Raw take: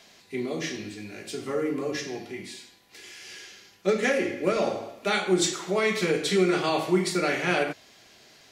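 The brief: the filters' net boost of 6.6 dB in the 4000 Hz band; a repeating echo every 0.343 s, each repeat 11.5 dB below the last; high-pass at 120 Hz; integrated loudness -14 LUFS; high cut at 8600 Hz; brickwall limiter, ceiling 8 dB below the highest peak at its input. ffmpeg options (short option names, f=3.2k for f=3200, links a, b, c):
-af "highpass=120,lowpass=8.6k,equalizer=f=4k:t=o:g=8,alimiter=limit=-16dB:level=0:latency=1,aecho=1:1:343|686|1029:0.266|0.0718|0.0194,volume=13.5dB"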